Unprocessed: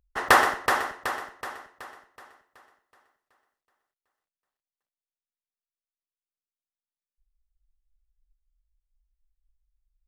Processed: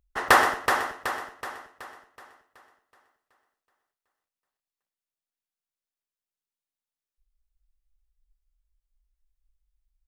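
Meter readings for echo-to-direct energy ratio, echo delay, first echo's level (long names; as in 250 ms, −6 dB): −17.5 dB, 103 ms, −18.0 dB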